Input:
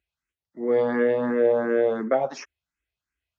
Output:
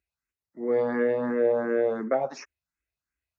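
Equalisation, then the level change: bell 3200 Hz -12 dB 0.24 oct; -3.0 dB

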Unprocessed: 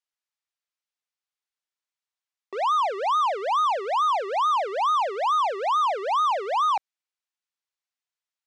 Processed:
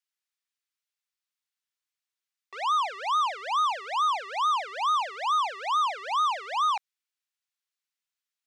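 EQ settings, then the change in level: HPF 1300 Hz 12 dB/oct; +1.5 dB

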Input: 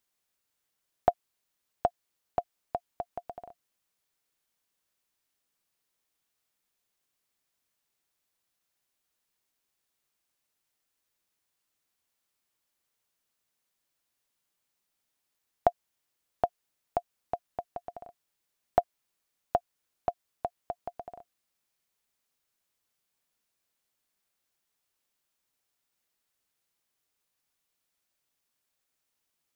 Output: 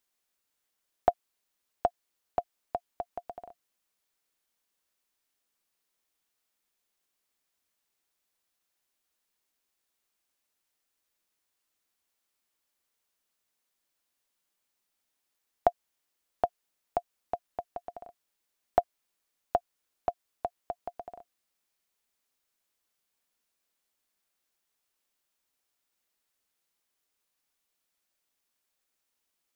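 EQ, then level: bell 120 Hz -11.5 dB 0.58 oct; 0.0 dB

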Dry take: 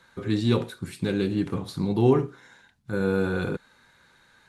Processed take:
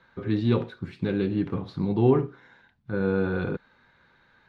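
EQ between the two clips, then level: air absorption 250 m; 0.0 dB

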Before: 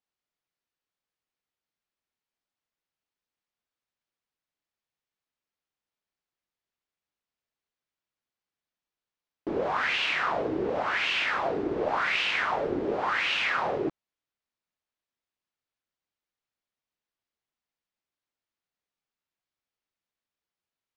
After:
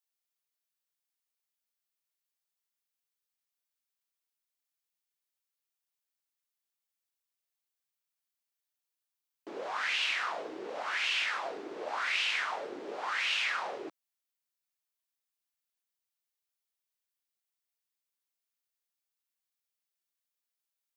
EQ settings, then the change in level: HPF 180 Hz 12 dB/oct; differentiator; tilt shelf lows +5 dB, about 1200 Hz; +8.5 dB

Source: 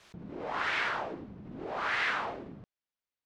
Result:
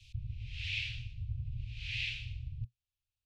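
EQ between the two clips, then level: Chebyshev band-stop 120–2500 Hz, order 5; RIAA curve playback; low shelf 96 Hz -5.5 dB; +6.5 dB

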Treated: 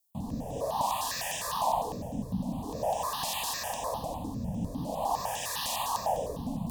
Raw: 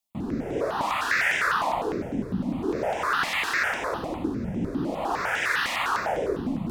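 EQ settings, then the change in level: Butterworth band-stop 1400 Hz, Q 1.7; high shelf 7500 Hz +12 dB; fixed phaser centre 880 Hz, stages 4; 0.0 dB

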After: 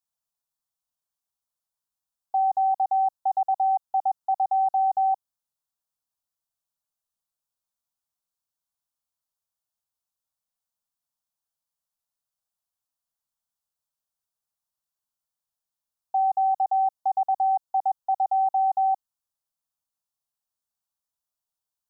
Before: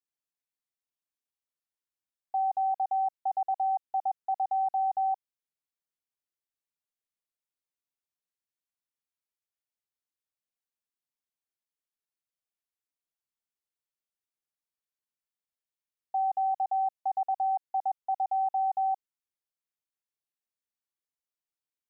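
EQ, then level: fixed phaser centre 900 Hz, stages 4; +6.0 dB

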